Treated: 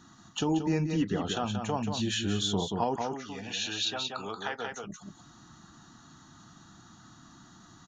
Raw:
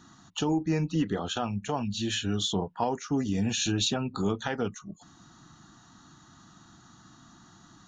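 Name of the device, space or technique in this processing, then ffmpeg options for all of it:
ducked delay: -filter_complex "[0:a]asettb=1/sr,asplit=3[link_01][link_02][link_03];[link_01]atrim=end=2.964[link_04];[link_02]atrim=start=2.96:end=4.72,asetpts=PTS-STARTPTS,afade=type=in:duration=0.004:curve=qsin,afade=type=out:start_time=1.756:duration=0.004:curve=qsin,acrossover=split=530 5900:gain=0.141 1 0.0794[link_05][link_06][link_07];[link_05][link_06][link_07]amix=inputs=3:normalize=0[link_08];[link_03]atrim=start=4.716[link_09];[link_04][link_08]acrossfade=duration=0.004:curve1=hsin:curve2=qsin[link_10];[link_10][link_09]acrossfade=duration=0.004:curve1=qsin:curve2=hsin,asplit=3[link_11][link_12][link_13];[link_12]adelay=181,volume=-3.5dB[link_14];[link_13]apad=whole_len=355168[link_15];[link_14][link_15]sidechaincompress=threshold=-33dB:ratio=3:attack=34:release=165[link_16];[link_11][link_16]amix=inputs=2:normalize=0,volume=-1dB"

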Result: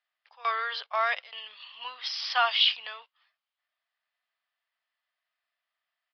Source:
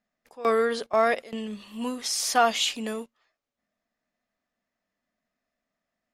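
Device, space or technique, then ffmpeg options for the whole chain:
musical greeting card: -af "aresample=11025,aresample=44100,highpass=frequency=890:width=0.5412,highpass=frequency=890:width=1.3066,equalizer=frequency=3100:width_type=o:width=0.37:gain=7"

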